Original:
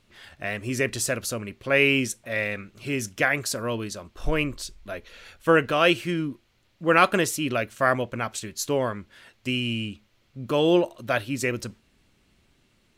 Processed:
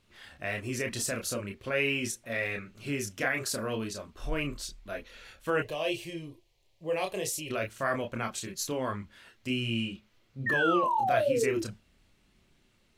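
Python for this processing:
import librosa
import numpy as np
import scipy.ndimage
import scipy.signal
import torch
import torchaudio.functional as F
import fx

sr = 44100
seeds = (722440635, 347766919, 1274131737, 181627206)

p1 = fx.over_compress(x, sr, threshold_db=-28.0, ratio=-1.0)
p2 = x + (p1 * librosa.db_to_amplitude(-3.0))
p3 = fx.spec_paint(p2, sr, seeds[0], shape='fall', start_s=10.46, length_s=1.16, low_hz=330.0, high_hz=1900.0, level_db=-17.0)
p4 = fx.chorus_voices(p3, sr, voices=4, hz=0.37, base_ms=29, depth_ms=2.9, mix_pct=40)
p5 = fx.fixed_phaser(p4, sr, hz=580.0, stages=4, at=(5.62, 7.5))
y = p5 * librosa.db_to_amplitude(-7.0)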